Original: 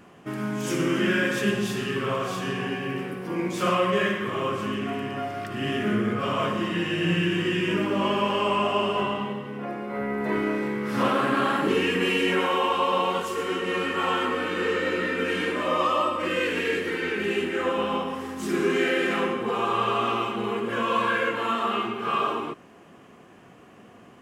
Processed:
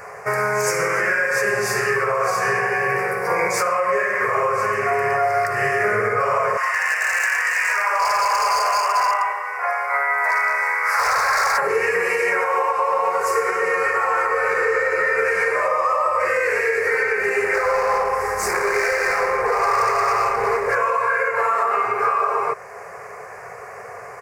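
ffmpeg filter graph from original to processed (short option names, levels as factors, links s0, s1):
-filter_complex "[0:a]asettb=1/sr,asplit=3[s0][s1][s2];[s0]atrim=end=6.574[s3];[s1]atrim=start=6.57:end=11.58,asetpts=PTS-STARTPTS,afade=t=in:d=0.004:c=qsin,afade=t=out:st=5.006:d=0.004:c=qsin,highpass=f=820:w=0.5412,highpass=f=820:w=1.3066,equalizer=f=3900:w=4:g=-4,aeval=exprs='0.0473*(abs(mod(val(0)/0.0473+3,4)-2)-1)':c=same[s4];[s2]atrim=start=11.576[s5];[s3][s4]acrossfade=d=0.004:c1=hsin:c2=qsin[s6];[s6][s5]acrossfade=d=0.004:c1=qsin:c2=hsin,asettb=1/sr,asplit=3[s7][s8][s9];[s7]atrim=end=17.544[s10];[s8]atrim=start=17.54:end=20.75,asetpts=PTS-STARTPTS,afade=t=in:d=0.004:c=qsin,afade=t=out:st=3.206:d=0.004:c=qsin,aeval=exprs='val(0)+0.00447*(sin(2*PI*50*n/s)+sin(2*PI*2*50*n/s)/2+sin(2*PI*3*50*n/s)/3+sin(2*PI*4*50*n/s)/4+sin(2*PI*5*50*n/s)/5)':c=same,volume=22.4,asoftclip=hard,volume=0.0447[s11];[s9]atrim=start=20.746[s12];[s10][s11]acrossfade=d=0.004:c1=hsin:c2=qsin[s13];[s13][s12]acrossfade=d=0.004:c1=qsin:c2=hsin,firequalizer=gain_entry='entry(120,0);entry(290,-30);entry(420,10);entry(2200,13);entry(3200,-21);entry(4700,9)':delay=0.05:min_phase=1,acompressor=threshold=0.158:ratio=6,alimiter=limit=0.133:level=0:latency=1:release=432,volume=2.24"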